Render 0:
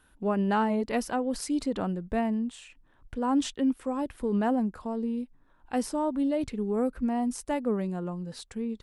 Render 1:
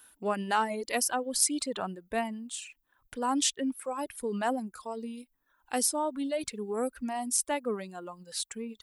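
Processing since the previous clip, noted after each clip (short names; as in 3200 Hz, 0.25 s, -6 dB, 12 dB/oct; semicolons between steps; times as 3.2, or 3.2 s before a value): RIAA curve recording; reverb removal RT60 1.5 s; gain +1 dB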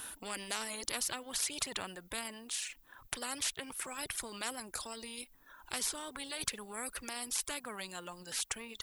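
spectral compressor 4:1; gain -4 dB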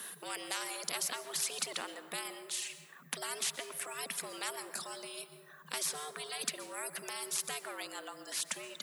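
frequency shift +140 Hz; plate-style reverb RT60 1.6 s, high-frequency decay 0.35×, pre-delay 0.11 s, DRR 11 dB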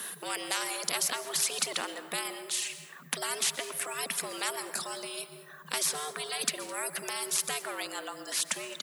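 echo 0.211 s -20.5 dB; gain +6 dB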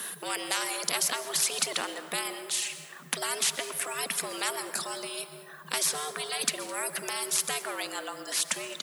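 plate-style reverb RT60 4.7 s, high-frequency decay 0.45×, DRR 17 dB; gain +2 dB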